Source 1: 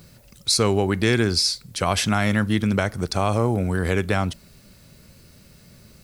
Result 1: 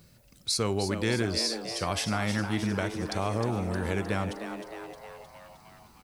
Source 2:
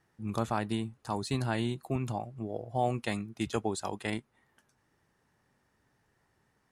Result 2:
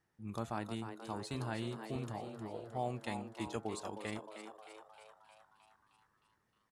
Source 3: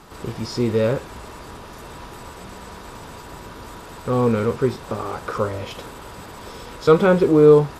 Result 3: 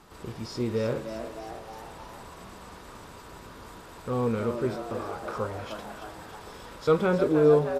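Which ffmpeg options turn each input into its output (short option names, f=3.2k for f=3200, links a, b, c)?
-filter_complex "[0:a]bandreject=f=136.9:t=h:w=4,bandreject=f=273.8:t=h:w=4,bandreject=f=410.7:t=h:w=4,bandreject=f=547.6:t=h:w=4,bandreject=f=684.5:t=h:w=4,bandreject=f=821.4:t=h:w=4,bandreject=f=958.3:t=h:w=4,bandreject=f=1.0952k:t=h:w=4,bandreject=f=1.2321k:t=h:w=4,bandreject=f=1.369k:t=h:w=4,bandreject=f=1.5059k:t=h:w=4,asplit=9[a][b][c][d][e][f][g][h][i];[b]adelay=310,afreqshift=110,volume=-9dB[j];[c]adelay=620,afreqshift=220,volume=-13.3dB[k];[d]adelay=930,afreqshift=330,volume=-17.6dB[l];[e]adelay=1240,afreqshift=440,volume=-21.9dB[m];[f]adelay=1550,afreqshift=550,volume=-26.2dB[n];[g]adelay=1860,afreqshift=660,volume=-30.5dB[o];[h]adelay=2170,afreqshift=770,volume=-34.8dB[p];[i]adelay=2480,afreqshift=880,volume=-39.1dB[q];[a][j][k][l][m][n][o][p][q]amix=inputs=9:normalize=0,volume=-8.5dB"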